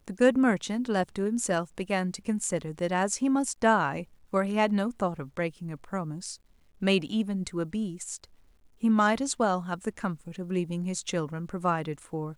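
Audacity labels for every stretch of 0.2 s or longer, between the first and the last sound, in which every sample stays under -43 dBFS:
4.040000	4.330000	silence
6.360000	6.820000	silence
8.240000	8.820000	silence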